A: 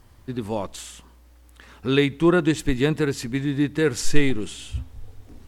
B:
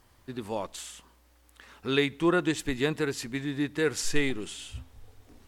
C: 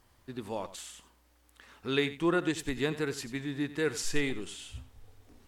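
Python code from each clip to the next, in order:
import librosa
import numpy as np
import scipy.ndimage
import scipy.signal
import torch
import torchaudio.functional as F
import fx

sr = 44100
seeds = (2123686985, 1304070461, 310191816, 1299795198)

y1 = fx.low_shelf(x, sr, hz=290.0, db=-9.0)
y1 = y1 * librosa.db_to_amplitude(-3.0)
y2 = y1 + 10.0 ** (-14.5 / 20.0) * np.pad(y1, (int(90 * sr / 1000.0), 0))[:len(y1)]
y2 = y2 * librosa.db_to_amplitude(-3.5)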